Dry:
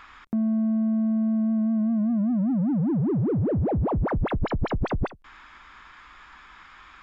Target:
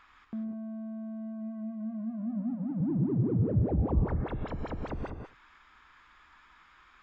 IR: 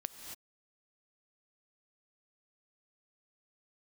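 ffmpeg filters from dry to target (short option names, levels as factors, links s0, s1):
-filter_complex "[0:a]asettb=1/sr,asplit=3[s0][s1][s2];[s0]atrim=end=2.804[s3];[s1]atrim=start=2.8:end=4.06,asetpts=PTS-STARTPTS,afade=t=in:d=0.004:c=qsin,afade=t=out:st=1.256:d=0.004:c=qsin,lowshelf=f=260:g=10[s4];[s2]atrim=start=4.056[s5];[s3][s4]acrossfade=d=0.004:c1=hsin:c2=qsin[s6];[s6][s5]acrossfade=d=0.004:c1=qsin:c2=hsin[s7];[1:a]atrim=start_sample=2205,asetrate=61740,aresample=44100[s8];[s7][s8]afir=irnorm=-1:irlink=0,volume=0.501"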